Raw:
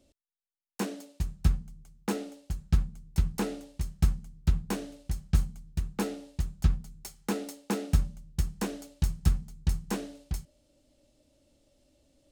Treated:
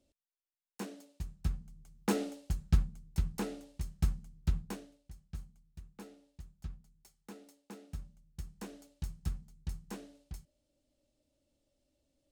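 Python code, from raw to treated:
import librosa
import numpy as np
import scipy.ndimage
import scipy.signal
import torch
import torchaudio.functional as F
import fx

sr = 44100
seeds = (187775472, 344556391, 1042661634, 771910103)

y = fx.gain(x, sr, db=fx.line((1.51, -9.5), (2.23, 2.0), (3.19, -6.0), (4.6, -6.0), (5.01, -19.0), (7.89, -19.0), (8.77, -12.0)))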